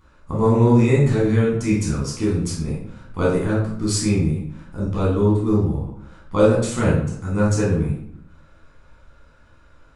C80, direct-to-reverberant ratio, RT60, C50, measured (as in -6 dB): 6.5 dB, -6.5 dB, 0.70 s, 2.5 dB